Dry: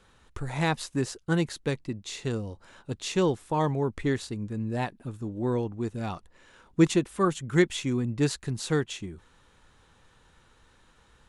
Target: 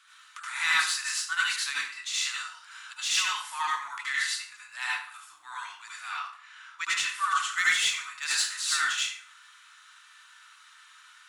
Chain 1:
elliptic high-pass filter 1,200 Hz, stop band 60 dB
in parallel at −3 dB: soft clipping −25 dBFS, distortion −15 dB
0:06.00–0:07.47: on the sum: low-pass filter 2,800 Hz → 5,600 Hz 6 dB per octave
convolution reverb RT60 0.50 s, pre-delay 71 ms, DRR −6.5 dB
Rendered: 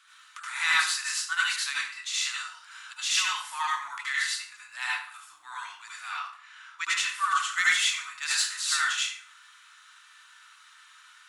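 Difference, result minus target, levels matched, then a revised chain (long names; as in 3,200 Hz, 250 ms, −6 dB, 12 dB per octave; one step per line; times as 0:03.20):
soft clipping: distortion −6 dB
elliptic high-pass filter 1,200 Hz, stop band 60 dB
in parallel at −3 dB: soft clipping −31 dBFS, distortion −9 dB
0:06.00–0:07.47: on the sum: low-pass filter 2,800 Hz → 5,600 Hz 6 dB per octave
convolution reverb RT60 0.50 s, pre-delay 71 ms, DRR −6.5 dB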